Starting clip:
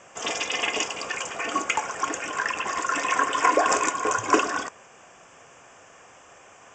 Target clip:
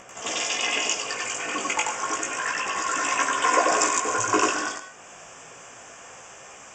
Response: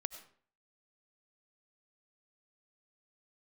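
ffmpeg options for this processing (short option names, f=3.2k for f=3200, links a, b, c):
-filter_complex "[0:a]acompressor=mode=upward:threshold=-38dB:ratio=2.5,flanger=delay=15:depth=5.2:speed=0.31,asplit=2[a][b];[1:a]atrim=start_sample=2205,highshelf=f=3.9k:g=12,adelay=92[c];[b][c]afir=irnorm=-1:irlink=0,volume=-0.5dB[d];[a][d]amix=inputs=2:normalize=0"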